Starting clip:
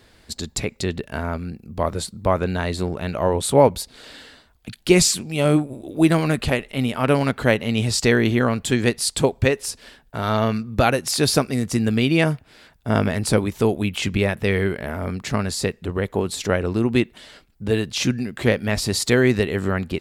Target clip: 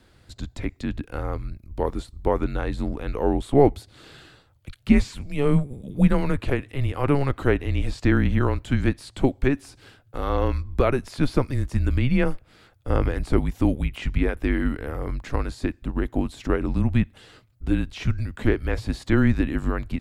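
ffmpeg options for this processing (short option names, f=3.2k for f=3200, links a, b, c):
-filter_complex "[0:a]afreqshift=-140,tiltshelf=f=970:g=3,acrossover=split=2900[a][b];[b]acompressor=threshold=-42dB:ratio=4:attack=1:release=60[c];[a][c]amix=inputs=2:normalize=0,volume=-4dB"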